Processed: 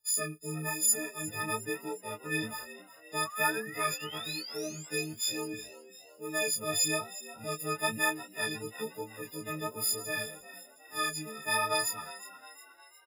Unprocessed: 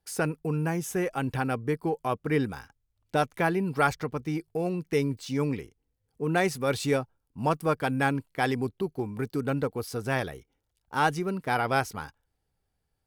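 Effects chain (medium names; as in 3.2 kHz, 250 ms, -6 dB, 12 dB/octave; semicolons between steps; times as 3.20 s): partials quantised in pitch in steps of 6 st; tilt EQ +2 dB/octave; painted sound rise, 3.25–4.87 s, 1.1–7.8 kHz -35 dBFS; rotary cabinet horn 1.1 Hz; chorus 1.1 Hz, delay 15.5 ms, depth 4.5 ms; on a send: frequency-shifting echo 358 ms, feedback 51%, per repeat +80 Hz, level -16 dB; on the sum: trim -3.5 dB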